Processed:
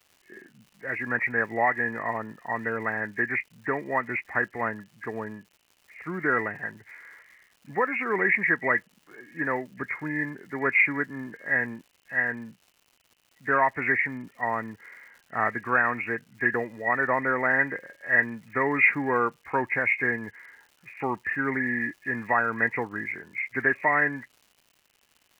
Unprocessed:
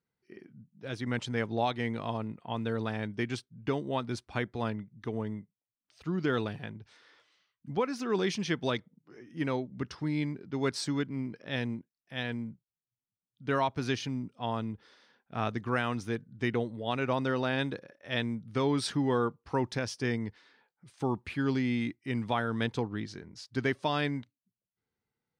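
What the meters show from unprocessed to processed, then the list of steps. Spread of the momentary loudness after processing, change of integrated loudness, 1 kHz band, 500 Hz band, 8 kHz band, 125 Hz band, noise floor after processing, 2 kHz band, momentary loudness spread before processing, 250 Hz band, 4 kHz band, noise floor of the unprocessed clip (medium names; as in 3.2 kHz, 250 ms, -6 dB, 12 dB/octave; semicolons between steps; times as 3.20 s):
14 LU, +7.0 dB, +7.5 dB, +2.5 dB, under -10 dB, -5.5 dB, -67 dBFS, +14.5 dB, 10 LU, -1.0 dB, under -15 dB, under -85 dBFS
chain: knee-point frequency compression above 1.6 kHz 4:1; tilt EQ +4.5 dB/octave; crackle 250 per s -54 dBFS; trim +7.5 dB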